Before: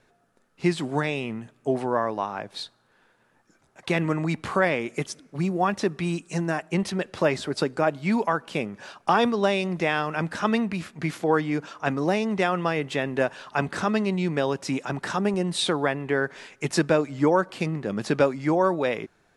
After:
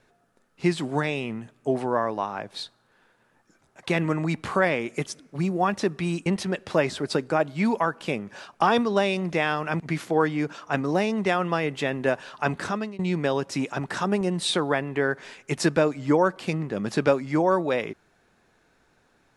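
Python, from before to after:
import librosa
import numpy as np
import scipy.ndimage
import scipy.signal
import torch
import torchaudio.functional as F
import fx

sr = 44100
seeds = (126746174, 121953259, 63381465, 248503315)

y = fx.edit(x, sr, fx.cut(start_s=6.26, length_s=0.47),
    fx.cut(start_s=10.27, length_s=0.66),
    fx.fade_out_to(start_s=13.73, length_s=0.39, floor_db=-23.0), tone=tone)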